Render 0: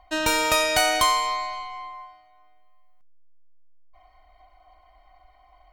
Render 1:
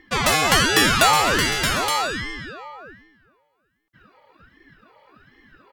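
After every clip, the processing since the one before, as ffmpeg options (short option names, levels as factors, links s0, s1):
-af "highpass=f=110:w=0.5412,highpass=f=110:w=1.3066,aecho=1:1:755|870:0.2|0.562,aeval=exprs='val(0)*sin(2*PI*610*n/s+610*0.75/1.3*sin(2*PI*1.3*n/s))':c=same,volume=2.24"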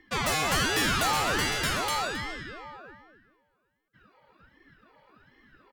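-filter_complex "[0:a]acrossover=split=120[s0][s1];[s1]asoftclip=type=hard:threshold=0.158[s2];[s0][s2]amix=inputs=2:normalize=0,asplit=2[s3][s4];[s4]adelay=268.2,volume=0.282,highshelf=f=4000:g=-6.04[s5];[s3][s5]amix=inputs=2:normalize=0,volume=0.473"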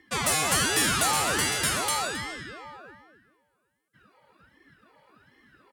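-af "highpass=67,equalizer=f=9500:w=1.2:g=11.5"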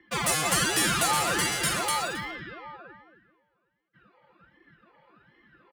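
-filter_complex "[0:a]aecho=1:1:5.8:0.49,acrossover=split=110|800|4000[s0][s1][s2][s3];[s3]aeval=exprs='sgn(val(0))*max(abs(val(0))-0.0075,0)':c=same[s4];[s0][s1][s2][s4]amix=inputs=4:normalize=0,volume=0.891"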